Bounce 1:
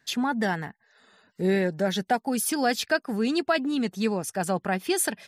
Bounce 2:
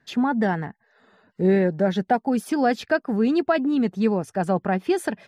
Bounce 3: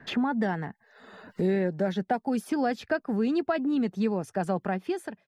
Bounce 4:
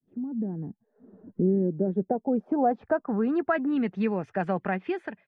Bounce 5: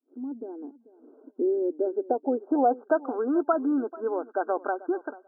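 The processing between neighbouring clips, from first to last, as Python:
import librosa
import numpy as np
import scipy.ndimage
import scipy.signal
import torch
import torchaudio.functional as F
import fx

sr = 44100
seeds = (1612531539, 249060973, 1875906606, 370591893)

y1 = fx.lowpass(x, sr, hz=1000.0, slope=6)
y1 = F.gain(torch.from_numpy(y1), 5.5).numpy()
y2 = fx.fade_out_tail(y1, sr, length_s=0.64)
y2 = fx.band_squash(y2, sr, depth_pct=70)
y2 = F.gain(torch.from_numpy(y2), -6.0).numpy()
y3 = fx.fade_in_head(y2, sr, length_s=0.8)
y3 = fx.filter_sweep_lowpass(y3, sr, from_hz=300.0, to_hz=2300.0, start_s=1.61, end_s=3.85, q=1.9)
y4 = fx.brickwall_bandpass(y3, sr, low_hz=250.0, high_hz=1600.0)
y4 = fx.echo_feedback(y4, sr, ms=439, feedback_pct=17, wet_db=-19)
y4 = F.gain(torch.from_numpy(y4), 2.0).numpy()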